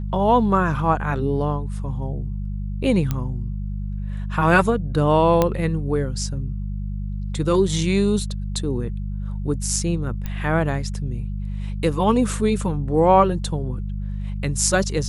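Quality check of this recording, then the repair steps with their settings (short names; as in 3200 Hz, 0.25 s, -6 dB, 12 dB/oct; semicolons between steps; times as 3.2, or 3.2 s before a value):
hum 50 Hz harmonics 4 -27 dBFS
3.11 pop -10 dBFS
5.42 pop -5 dBFS
10.26 pop -15 dBFS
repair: de-click; de-hum 50 Hz, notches 4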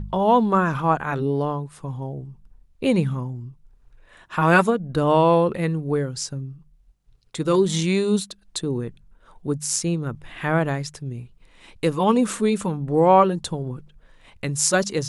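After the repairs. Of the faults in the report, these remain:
none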